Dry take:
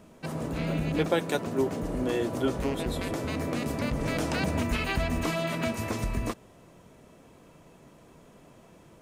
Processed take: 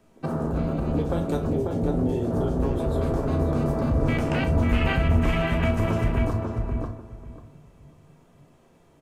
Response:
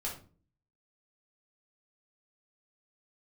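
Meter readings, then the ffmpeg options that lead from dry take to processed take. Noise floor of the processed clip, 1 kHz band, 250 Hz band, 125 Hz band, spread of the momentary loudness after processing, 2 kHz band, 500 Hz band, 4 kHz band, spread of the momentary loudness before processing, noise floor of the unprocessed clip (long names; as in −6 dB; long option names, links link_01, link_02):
−57 dBFS, +3.0 dB, +5.0 dB, +9.0 dB, 8 LU, +1.5 dB, +3.5 dB, −2.0 dB, 4 LU, −55 dBFS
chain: -filter_complex "[0:a]acrossover=split=150|3000[link_01][link_02][link_03];[link_02]acompressor=threshold=-34dB:ratio=8[link_04];[link_01][link_04][link_03]amix=inputs=3:normalize=0,afwtdn=0.0112,asplit=2[link_05][link_06];[link_06]acompressor=threshold=-36dB:ratio=6,volume=0dB[link_07];[link_05][link_07]amix=inputs=2:normalize=0,asplit=2[link_08][link_09];[link_09]adelay=35,volume=-12dB[link_10];[link_08][link_10]amix=inputs=2:normalize=0,asplit=2[link_11][link_12];[link_12]adelay=543,lowpass=frequency=2800:poles=1,volume=-3.5dB,asplit=2[link_13][link_14];[link_14]adelay=543,lowpass=frequency=2800:poles=1,volume=0.2,asplit=2[link_15][link_16];[link_16]adelay=543,lowpass=frequency=2800:poles=1,volume=0.2[link_17];[link_11][link_13][link_15][link_17]amix=inputs=4:normalize=0,asplit=2[link_18][link_19];[1:a]atrim=start_sample=2205[link_20];[link_19][link_20]afir=irnorm=-1:irlink=0,volume=-1.5dB[link_21];[link_18][link_21]amix=inputs=2:normalize=0"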